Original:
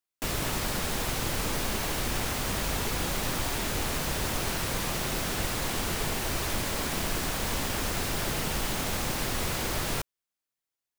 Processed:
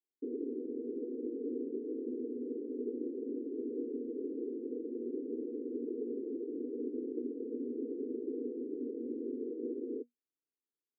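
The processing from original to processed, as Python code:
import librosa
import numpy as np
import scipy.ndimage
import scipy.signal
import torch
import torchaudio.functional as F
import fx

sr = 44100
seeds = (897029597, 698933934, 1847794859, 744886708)

y = scipy.signal.sosfilt(scipy.signal.cheby1(5, 1.0, [240.0, 480.0], 'bandpass', fs=sr, output='sos'), x)
y = F.gain(torch.from_numpy(y), 2.0).numpy()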